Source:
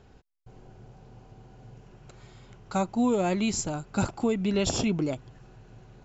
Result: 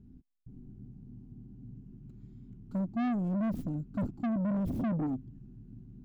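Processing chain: tracing distortion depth 0.43 ms; EQ curve 120 Hz 0 dB, 260 Hz +9 dB, 530 Hz -26 dB; soft clip -28.5 dBFS, distortion -5 dB

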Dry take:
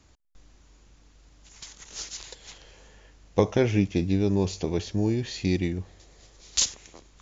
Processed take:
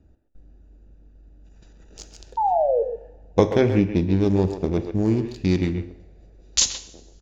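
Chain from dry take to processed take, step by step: Wiener smoothing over 41 samples; 2.37–2.83 painted sound fall 440–930 Hz -25 dBFS; 3.61–4.17 high shelf 3900 Hz -7.5 dB; speakerphone echo 0.13 s, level -8 dB; two-slope reverb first 0.75 s, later 3.2 s, from -28 dB, DRR 10.5 dB; gain +4.5 dB

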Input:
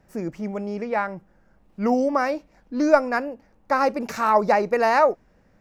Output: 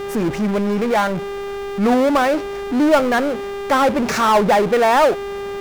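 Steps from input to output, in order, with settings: treble ducked by the level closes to 2700 Hz, closed at -17 dBFS; buzz 400 Hz, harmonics 9, -46 dBFS -8 dB/oct; power-law curve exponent 0.5; gain -2 dB

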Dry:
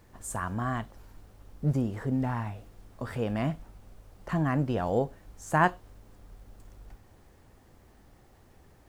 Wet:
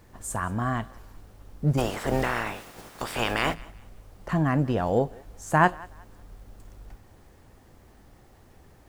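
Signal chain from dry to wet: 1.77–3.53 spectral limiter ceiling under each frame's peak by 27 dB; thinning echo 0.185 s, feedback 30%, level -22 dB; gain +3.5 dB

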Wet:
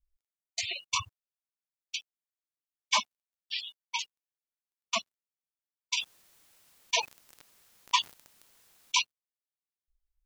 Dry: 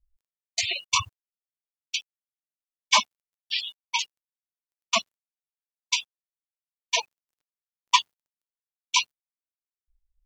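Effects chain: 5.97–9.02 fast leveller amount 50%; gain -7 dB

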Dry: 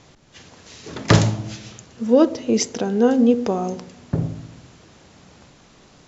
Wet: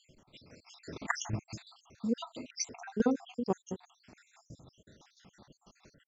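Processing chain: random spectral dropouts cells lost 71%; dynamic EQ 590 Hz, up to -7 dB, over -43 dBFS, Q 3.4; tremolo saw down 6 Hz, depth 65%; gain -4 dB

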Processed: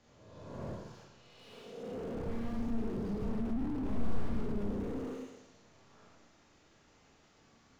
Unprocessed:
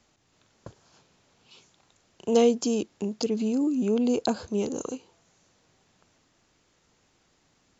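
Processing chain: spectral swells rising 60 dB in 1.28 s; high shelf 3200 Hz +3 dB; wrapped overs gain 18 dB; in parallel at -9 dB: sample-rate reducer 5000 Hz; on the sum: air absorption 81 m; Schroeder reverb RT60 0.97 s, combs from 27 ms, DRR -4.5 dB; slew limiter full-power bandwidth 12 Hz; gain -7.5 dB

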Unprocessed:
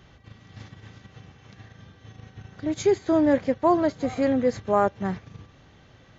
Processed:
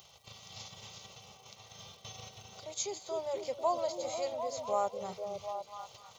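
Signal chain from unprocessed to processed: HPF 43 Hz 6 dB/oct; gate -50 dBFS, range -17 dB; tilt +4 dB/oct; in parallel at -2 dB: limiter -23 dBFS, peak gain reduction 12.5 dB; on the sum: upward compressor, threshold -27 dBFS; random-step tremolo; crackle 380/s -47 dBFS; fixed phaser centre 700 Hz, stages 4; on a send: delay with a stepping band-pass 0.248 s, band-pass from 280 Hz, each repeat 0.7 oct, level -1 dB; on the sum: gain -7 dB

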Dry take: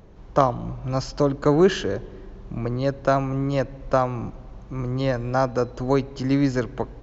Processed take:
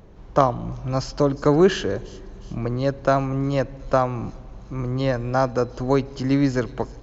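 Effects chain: thin delay 0.36 s, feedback 55%, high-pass 4700 Hz, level -14 dB; gain +1 dB

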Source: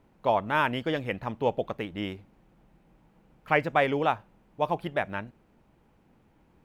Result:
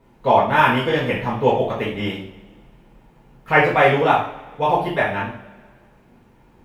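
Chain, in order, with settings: two-slope reverb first 0.47 s, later 1.7 s, from -19 dB, DRR -9 dB; gain +1 dB

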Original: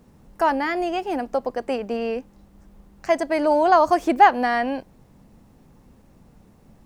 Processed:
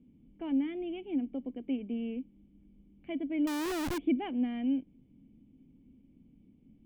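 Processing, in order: vocal tract filter i; 3.47–3.98 Schmitt trigger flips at -44 dBFS

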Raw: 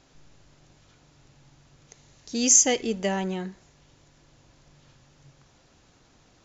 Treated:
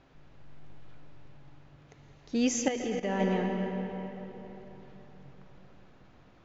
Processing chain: on a send at -4.5 dB: reverb RT60 3.8 s, pre-delay 95 ms; 2.68–3.2 on the sum: level quantiser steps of 15 dB; LPF 2500 Hz 12 dB/oct

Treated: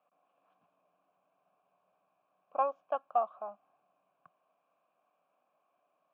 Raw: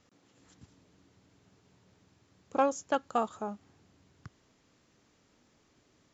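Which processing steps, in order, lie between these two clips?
vowel filter a; speaker cabinet 150–3300 Hz, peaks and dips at 170 Hz +9 dB, 390 Hz -4 dB, 590 Hz +8 dB, 1000 Hz +10 dB, 1600 Hz +7 dB

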